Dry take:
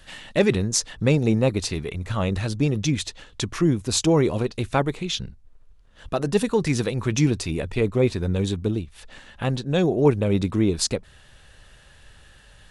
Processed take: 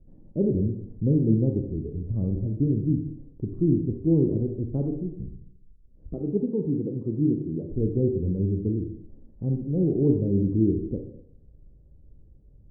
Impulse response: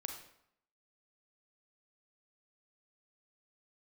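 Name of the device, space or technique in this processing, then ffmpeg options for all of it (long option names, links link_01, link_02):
next room: -filter_complex "[0:a]asettb=1/sr,asplit=3[link_01][link_02][link_03];[link_01]atrim=end=6.144[link_04];[link_02]atrim=start=6.14:end=7.7,asetpts=PTS-STARTPTS,afade=type=in:duration=0.004:curve=qsin,afade=type=out:start_time=1.556:duration=0.004:curve=qsin,highpass=160[link_05];[link_03]atrim=start=7.696[link_06];[link_04][link_05]acrossfade=duration=0.004:curve1=hsin:curve2=qsin[link_07];[link_07][link_06]acrossfade=duration=0.004:curve1=qsin:curve2=hsin,lowpass=frequency=380:width=0.5412,lowpass=frequency=380:width=1.3066[link_08];[1:a]atrim=start_sample=2205[link_09];[link_08][link_09]afir=irnorm=-1:irlink=0,volume=1.5dB"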